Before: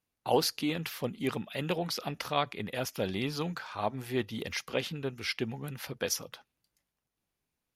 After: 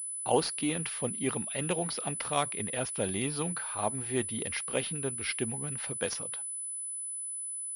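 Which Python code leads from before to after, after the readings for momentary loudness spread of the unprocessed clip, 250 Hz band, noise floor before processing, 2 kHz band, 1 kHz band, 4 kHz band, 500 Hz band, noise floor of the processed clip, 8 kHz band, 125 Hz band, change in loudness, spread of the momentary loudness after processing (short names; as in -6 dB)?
6 LU, 0.0 dB, under -85 dBFS, -0.5 dB, 0.0 dB, -3.0 dB, 0.0 dB, -38 dBFS, +11.0 dB, 0.0 dB, +1.5 dB, 5 LU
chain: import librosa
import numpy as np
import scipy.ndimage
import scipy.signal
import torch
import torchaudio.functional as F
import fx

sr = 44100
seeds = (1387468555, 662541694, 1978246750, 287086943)

y = fx.pwm(x, sr, carrier_hz=10000.0)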